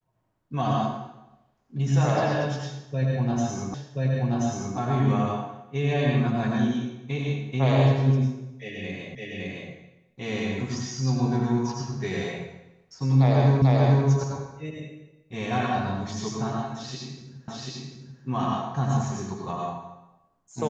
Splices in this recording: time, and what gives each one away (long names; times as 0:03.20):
0:03.74: the same again, the last 1.03 s
0:09.15: the same again, the last 0.56 s
0:13.62: the same again, the last 0.44 s
0:17.48: the same again, the last 0.74 s